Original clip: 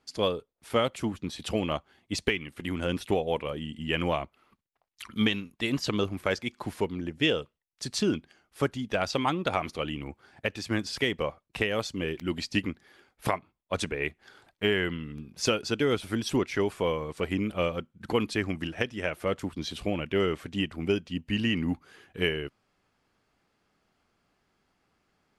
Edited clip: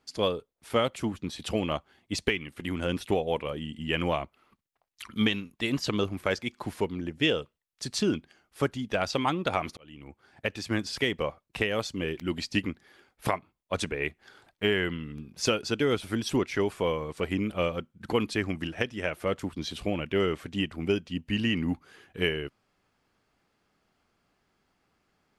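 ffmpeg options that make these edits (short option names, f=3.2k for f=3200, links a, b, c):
-filter_complex "[0:a]asplit=2[a][b];[a]atrim=end=9.77,asetpts=PTS-STARTPTS,afade=t=out:st=9.766:d=0.004:c=hsin[c];[b]atrim=start=9.77,asetpts=PTS-STARTPTS,afade=t=in:d=0.73[d];[c][d]concat=n=2:v=0:a=1"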